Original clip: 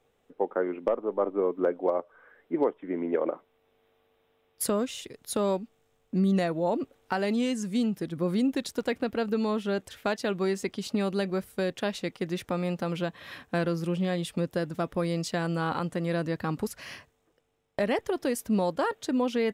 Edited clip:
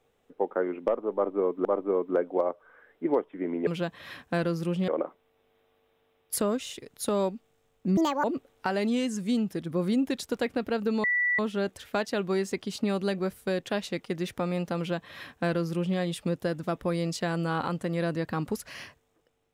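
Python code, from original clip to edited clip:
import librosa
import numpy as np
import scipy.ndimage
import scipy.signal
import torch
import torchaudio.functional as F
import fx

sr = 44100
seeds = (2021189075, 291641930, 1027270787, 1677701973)

y = fx.edit(x, sr, fx.repeat(start_s=1.14, length_s=0.51, count=2),
    fx.speed_span(start_s=6.25, length_s=0.45, speed=1.68),
    fx.insert_tone(at_s=9.5, length_s=0.35, hz=1960.0, db=-22.5),
    fx.duplicate(start_s=12.88, length_s=1.21, to_s=3.16), tone=tone)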